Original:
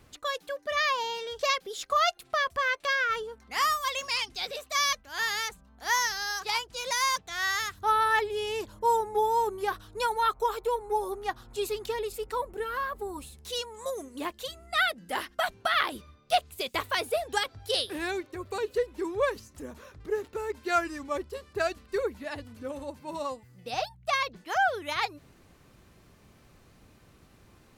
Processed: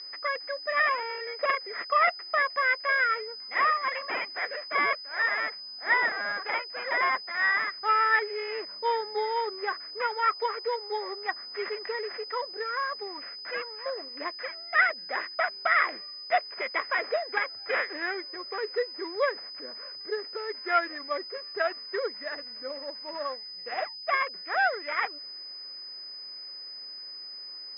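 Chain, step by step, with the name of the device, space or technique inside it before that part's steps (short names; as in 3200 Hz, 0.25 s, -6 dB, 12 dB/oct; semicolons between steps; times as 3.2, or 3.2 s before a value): toy sound module (decimation joined by straight lines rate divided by 8×; pulse-width modulation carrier 5000 Hz; speaker cabinet 590–3900 Hz, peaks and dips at 870 Hz -9 dB, 2000 Hz +9 dB, 2800 Hz -4 dB); gain +4.5 dB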